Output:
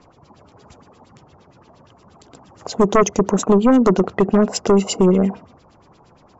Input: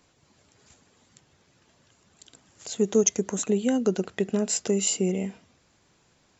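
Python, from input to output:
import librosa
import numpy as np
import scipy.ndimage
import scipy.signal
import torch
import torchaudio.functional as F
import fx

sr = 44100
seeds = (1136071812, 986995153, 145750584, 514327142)

y = fx.band_shelf(x, sr, hz=2500.0, db=-12.0, octaves=1.7)
y = fx.filter_lfo_lowpass(y, sr, shape='sine', hz=8.6, low_hz=790.0, high_hz=3800.0, q=2.6)
y = fx.fold_sine(y, sr, drive_db=10, ceiling_db=-8.0)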